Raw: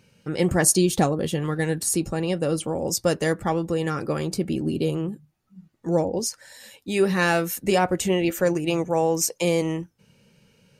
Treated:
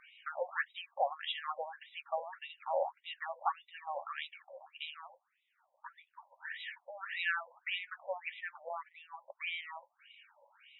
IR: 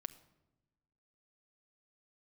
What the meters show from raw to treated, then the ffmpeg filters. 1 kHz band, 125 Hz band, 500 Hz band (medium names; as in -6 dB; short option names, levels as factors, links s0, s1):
-9.5 dB, under -40 dB, -19.0 dB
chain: -af "acompressor=threshold=0.0282:ratio=6,afftfilt=real='re*between(b*sr/1024,720*pow(2800/720,0.5+0.5*sin(2*PI*1.7*pts/sr))/1.41,720*pow(2800/720,0.5+0.5*sin(2*PI*1.7*pts/sr))*1.41)':imag='im*between(b*sr/1024,720*pow(2800/720,0.5+0.5*sin(2*PI*1.7*pts/sr))/1.41,720*pow(2800/720,0.5+0.5*sin(2*PI*1.7*pts/sr))*1.41)':win_size=1024:overlap=0.75,volume=2.66"